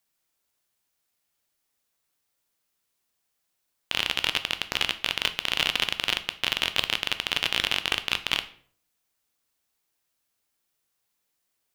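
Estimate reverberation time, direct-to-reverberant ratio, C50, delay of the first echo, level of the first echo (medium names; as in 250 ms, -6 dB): 0.55 s, 10.0 dB, 15.5 dB, no echo, no echo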